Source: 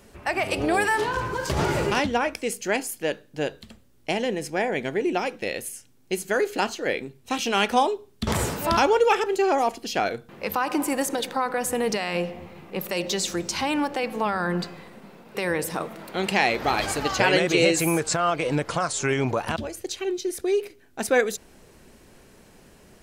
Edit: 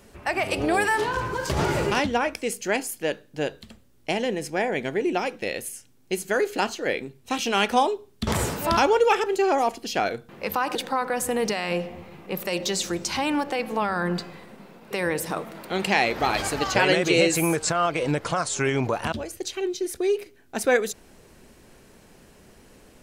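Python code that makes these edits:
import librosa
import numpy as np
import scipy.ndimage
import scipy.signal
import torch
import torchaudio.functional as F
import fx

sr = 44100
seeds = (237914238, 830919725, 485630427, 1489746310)

y = fx.edit(x, sr, fx.cut(start_s=10.75, length_s=0.44), tone=tone)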